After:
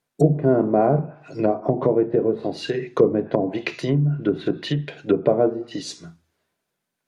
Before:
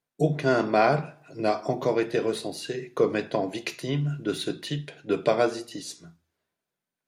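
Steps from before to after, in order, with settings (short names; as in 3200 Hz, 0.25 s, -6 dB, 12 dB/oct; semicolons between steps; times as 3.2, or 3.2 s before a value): treble ducked by the level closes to 540 Hz, closed at -22.5 dBFS; gain +7.5 dB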